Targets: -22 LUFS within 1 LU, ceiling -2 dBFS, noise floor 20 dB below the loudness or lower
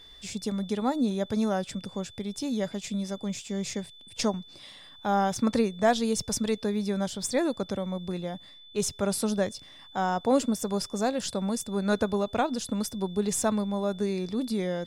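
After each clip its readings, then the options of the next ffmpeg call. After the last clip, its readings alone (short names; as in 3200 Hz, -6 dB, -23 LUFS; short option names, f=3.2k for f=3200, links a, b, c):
steady tone 3500 Hz; tone level -49 dBFS; loudness -29.0 LUFS; peak -10.0 dBFS; loudness target -22.0 LUFS
-> -af "bandreject=f=3.5k:w=30"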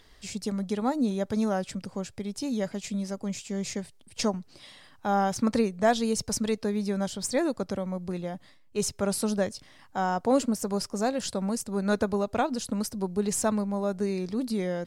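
steady tone none; loudness -29.0 LUFS; peak -10.0 dBFS; loudness target -22.0 LUFS
-> -af "volume=7dB"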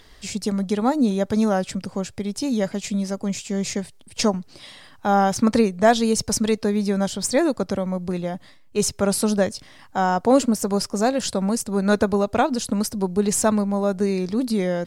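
loudness -22.0 LUFS; peak -3.0 dBFS; noise floor -49 dBFS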